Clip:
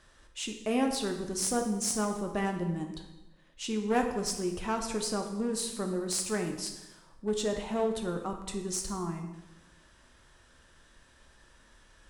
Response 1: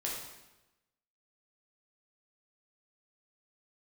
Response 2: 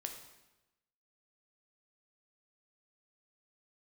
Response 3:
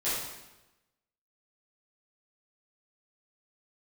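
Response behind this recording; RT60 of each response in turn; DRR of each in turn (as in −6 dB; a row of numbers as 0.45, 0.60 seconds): 2; 1.0, 1.0, 1.0 seconds; −4.0, 3.5, −13.0 decibels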